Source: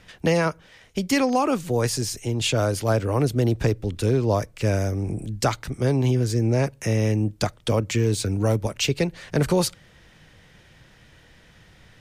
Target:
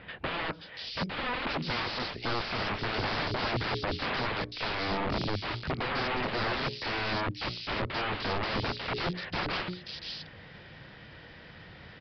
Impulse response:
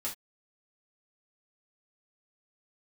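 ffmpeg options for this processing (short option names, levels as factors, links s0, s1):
-filter_complex "[0:a]highpass=f=100:p=1,bandreject=f=60:t=h:w=6,bandreject=f=120:t=h:w=6,bandreject=f=180:t=h:w=6,bandreject=f=240:t=h:w=6,bandreject=f=300:t=h:w=6,bandreject=f=360:t=h:w=6,bandreject=f=420:t=h:w=6,asplit=2[s0][s1];[s1]acompressor=threshold=0.02:ratio=16,volume=0.891[s2];[s0][s2]amix=inputs=2:normalize=0,aeval=exprs='0.398*(cos(1*acos(clip(val(0)/0.398,-1,1)))-cos(1*PI/2))+0.00447*(cos(8*acos(clip(val(0)/0.398,-1,1)))-cos(8*PI/2))':c=same,aeval=exprs='(mod(16.8*val(0)+1,2)-1)/16.8':c=same,acrossover=split=3400[s3][s4];[s4]adelay=530[s5];[s3][s5]amix=inputs=2:normalize=0,aresample=11025,aresample=44100"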